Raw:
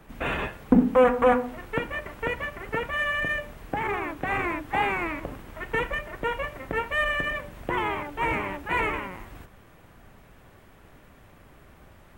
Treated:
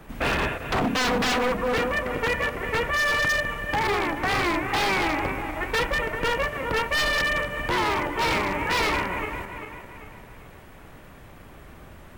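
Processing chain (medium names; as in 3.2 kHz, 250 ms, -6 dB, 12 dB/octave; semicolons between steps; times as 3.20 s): backward echo that repeats 197 ms, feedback 65%, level -9.5 dB; wavefolder -23.5 dBFS; trim +5.5 dB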